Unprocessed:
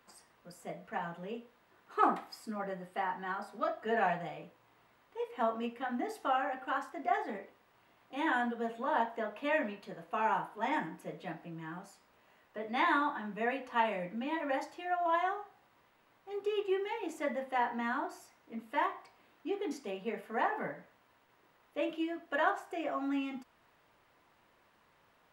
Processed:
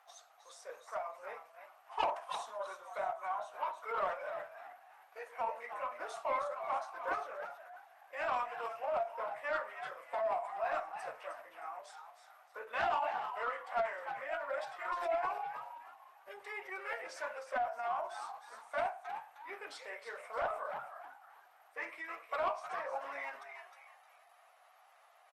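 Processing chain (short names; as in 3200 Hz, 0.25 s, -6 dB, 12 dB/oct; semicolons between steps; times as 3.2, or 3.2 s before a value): HPF 810 Hz 24 dB/oct; in parallel at -2.5 dB: compressor 6:1, threshold -45 dBFS, peak gain reduction 19.5 dB; on the sum: soft clip -26 dBFS, distortion -15 dB; frequency-shifting echo 0.311 s, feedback 33%, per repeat +130 Hz, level -8 dB; formant shift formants -5 st; Opus 24 kbps 48000 Hz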